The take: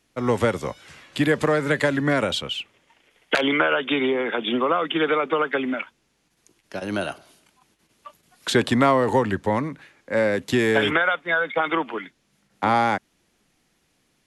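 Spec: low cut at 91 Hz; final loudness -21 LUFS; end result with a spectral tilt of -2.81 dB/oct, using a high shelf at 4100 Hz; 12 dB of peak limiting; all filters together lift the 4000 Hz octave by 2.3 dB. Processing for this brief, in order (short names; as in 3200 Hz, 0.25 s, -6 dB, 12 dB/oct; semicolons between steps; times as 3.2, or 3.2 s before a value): HPF 91 Hz; bell 4000 Hz +7 dB; high shelf 4100 Hz -7.5 dB; gain +5.5 dB; limiter -10.5 dBFS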